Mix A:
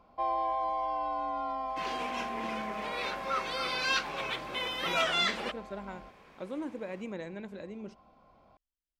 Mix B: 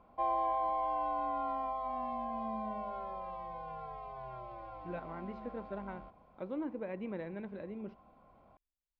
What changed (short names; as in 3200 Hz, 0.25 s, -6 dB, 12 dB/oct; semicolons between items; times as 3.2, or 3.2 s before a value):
speech: add air absorption 97 m; second sound: muted; master: add air absorption 330 m